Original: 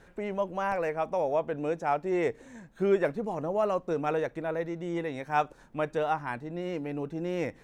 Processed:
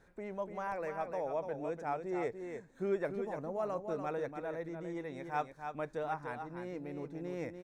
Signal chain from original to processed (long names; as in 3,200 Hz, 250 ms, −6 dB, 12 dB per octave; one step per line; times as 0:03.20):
parametric band 2,900 Hz −9.5 dB 0.24 octaves
on a send: single-tap delay 292 ms −7 dB
on the sum: level −9 dB